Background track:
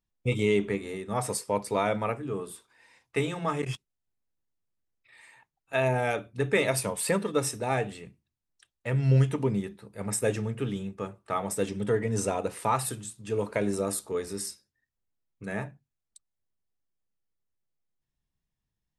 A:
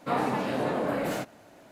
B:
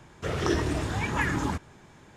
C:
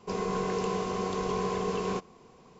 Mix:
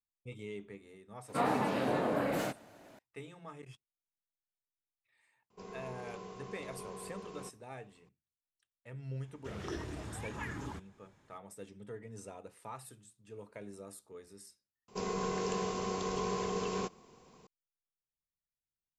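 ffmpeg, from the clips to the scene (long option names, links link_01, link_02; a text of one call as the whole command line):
ffmpeg -i bed.wav -i cue0.wav -i cue1.wav -i cue2.wav -filter_complex "[3:a]asplit=2[link_01][link_02];[0:a]volume=-19.5dB[link_03];[link_02]highshelf=frequency=5000:gain=8.5[link_04];[1:a]atrim=end=1.71,asetpts=PTS-STARTPTS,volume=-3.5dB,afade=type=in:duration=0.004:curve=hsin,afade=type=out:start_time=1.706:duration=0.004:curve=hsin,adelay=1280[link_05];[link_01]atrim=end=2.59,asetpts=PTS-STARTPTS,volume=-16.5dB,afade=type=in:duration=0.004:curve=hsin,afade=type=out:start_time=2.586:duration=0.004:curve=hsin,adelay=5500[link_06];[2:a]atrim=end=2.16,asetpts=PTS-STARTPTS,volume=-14.5dB,afade=type=in:duration=0.004:curve=hsin,afade=type=out:start_time=2.156:duration=0.004:curve=hsin,adelay=406602S[link_07];[link_04]atrim=end=2.59,asetpts=PTS-STARTPTS,volume=-5dB,afade=type=in:duration=0.004:curve=hsin,afade=type=out:start_time=2.586:duration=0.004:curve=hsin,adelay=14880[link_08];[link_03][link_05][link_06][link_07][link_08]amix=inputs=5:normalize=0" out.wav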